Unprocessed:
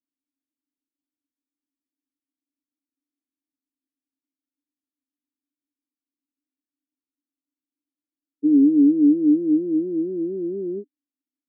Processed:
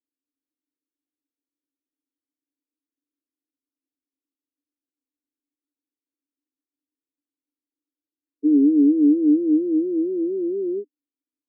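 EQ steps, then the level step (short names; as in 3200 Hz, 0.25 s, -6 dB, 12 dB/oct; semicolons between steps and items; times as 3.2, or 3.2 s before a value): HPF 350 Hz 24 dB/oct; Chebyshev low-pass 510 Hz, order 4; tilt -3 dB/oct; +2.0 dB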